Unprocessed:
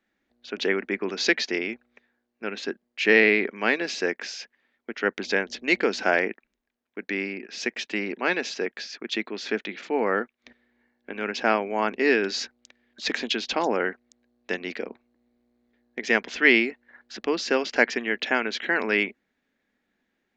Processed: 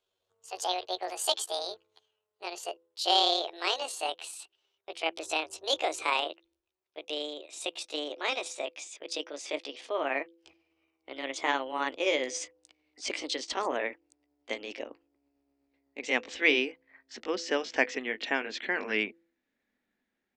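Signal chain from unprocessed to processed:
pitch glide at a constant tempo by +11 semitones ending unshifted
hum removal 167.8 Hz, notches 3
level −5.5 dB

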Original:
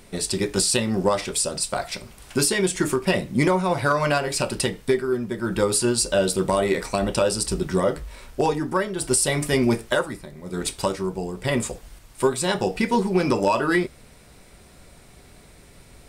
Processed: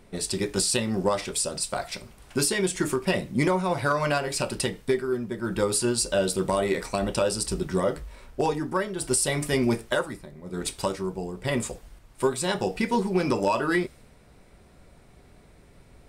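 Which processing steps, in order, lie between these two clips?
one half of a high-frequency compander decoder only
level −3.5 dB

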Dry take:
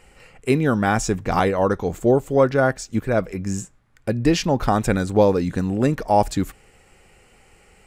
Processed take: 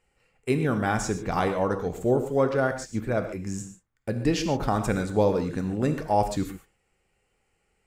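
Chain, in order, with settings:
noise gate −41 dBFS, range −13 dB
reverb whose tail is shaped and stops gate 160 ms flat, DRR 7 dB
level −6.5 dB

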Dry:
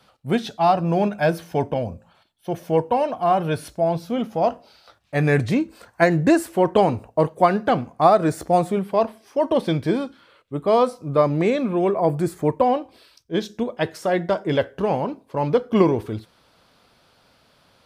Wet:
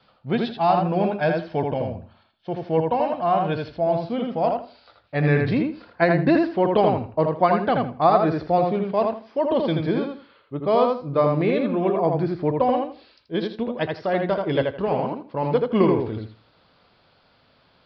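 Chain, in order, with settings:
Butterworth low-pass 5,000 Hz 72 dB per octave
on a send: feedback echo with a low-pass in the loop 81 ms, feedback 21%, low-pass 3,900 Hz, level −3.5 dB
on the sum: level −2.5 dB

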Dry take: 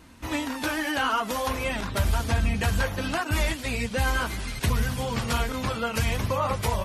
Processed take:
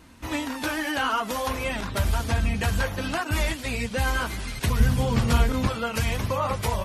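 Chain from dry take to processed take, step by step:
0:04.80–0:05.67: low-shelf EQ 380 Hz +8.5 dB

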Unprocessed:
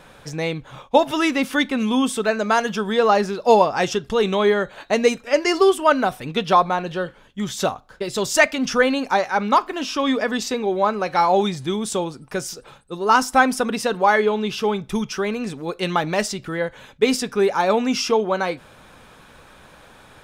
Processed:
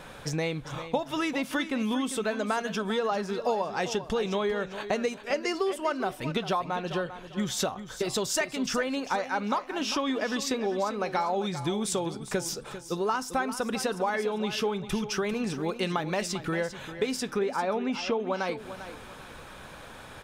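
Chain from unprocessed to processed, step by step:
0:17.39–0:18.20: low-pass filter 3,200 Hz 12 dB per octave
downward compressor 6 to 1, threshold −28 dBFS, peak gain reduction 18 dB
repeating echo 397 ms, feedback 26%, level −12 dB
level +1.5 dB

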